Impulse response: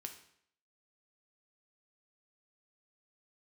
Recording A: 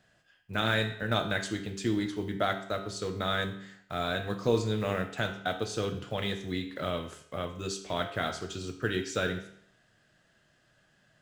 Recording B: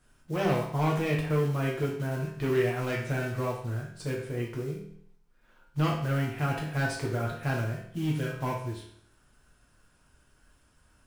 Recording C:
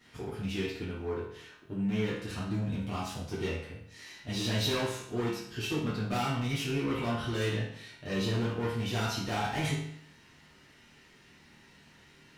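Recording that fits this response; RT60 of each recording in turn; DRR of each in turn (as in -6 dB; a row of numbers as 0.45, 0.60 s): A; 0.65, 0.65, 0.65 s; 4.5, -3.0, -9.5 dB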